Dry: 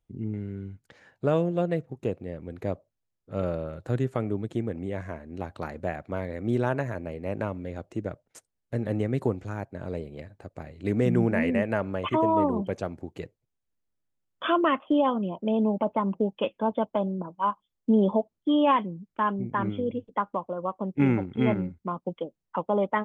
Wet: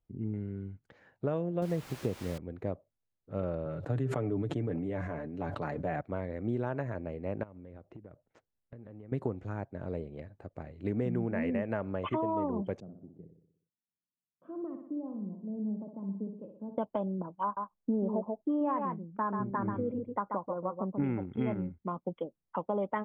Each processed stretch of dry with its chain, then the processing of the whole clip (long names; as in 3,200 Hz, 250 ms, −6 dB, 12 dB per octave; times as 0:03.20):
0:01.62–0:02.38: low-shelf EQ 360 Hz +6 dB + bit-depth reduction 6 bits, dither triangular
0:03.65–0:06.01: high-pass filter 74 Hz 24 dB per octave + comb filter 6.9 ms, depth 52% + level that may fall only so fast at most 25 dB per second
0:07.43–0:09.12: downward compressor 20 to 1, threshold −40 dBFS + high-frequency loss of the air 190 metres
0:12.80–0:16.78: four-pole ladder band-pass 210 Hz, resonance 35% + low-shelf EQ 160 Hz +4.5 dB + repeating echo 61 ms, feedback 56%, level −7 dB
0:17.43–0:21.04: low-pass filter 1,800 Hz 24 dB per octave + single-tap delay 136 ms −6.5 dB
whole clip: low-pass filter 1,600 Hz 6 dB per octave; downward compressor 4 to 1, threshold −25 dBFS; level −3 dB